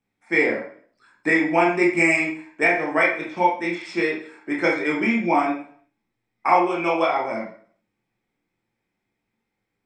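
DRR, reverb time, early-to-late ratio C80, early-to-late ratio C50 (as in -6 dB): -3.0 dB, 0.50 s, 10.5 dB, 6.0 dB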